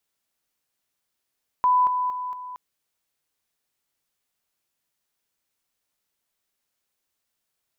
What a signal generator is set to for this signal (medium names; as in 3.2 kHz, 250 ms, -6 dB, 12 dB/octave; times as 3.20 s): level ladder 998 Hz -15.5 dBFS, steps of -6 dB, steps 4, 0.23 s 0.00 s